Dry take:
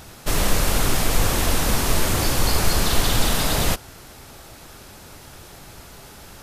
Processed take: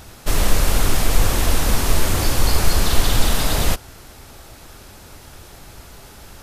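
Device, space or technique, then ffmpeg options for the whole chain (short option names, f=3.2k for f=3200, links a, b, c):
low shelf boost with a cut just above: -af "lowshelf=f=110:g=5.5,equalizer=f=150:t=o:w=0.77:g=-3"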